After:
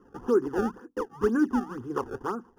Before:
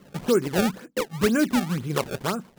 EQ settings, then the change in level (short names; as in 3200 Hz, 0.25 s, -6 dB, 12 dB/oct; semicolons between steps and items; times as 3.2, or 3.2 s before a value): running mean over 11 samples; fixed phaser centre 610 Hz, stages 6; 0.0 dB